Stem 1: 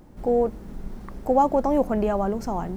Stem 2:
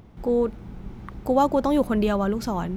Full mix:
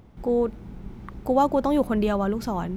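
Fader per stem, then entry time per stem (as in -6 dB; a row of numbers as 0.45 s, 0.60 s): -14.0 dB, -2.5 dB; 0.00 s, 0.00 s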